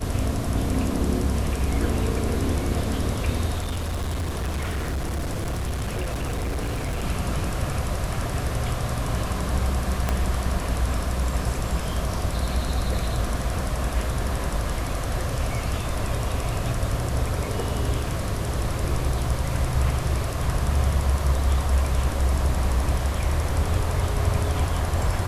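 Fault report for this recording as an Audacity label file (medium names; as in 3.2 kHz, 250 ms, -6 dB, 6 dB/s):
3.580000	7.040000	clipped -23.5 dBFS
10.090000	10.090000	pop -10 dBFS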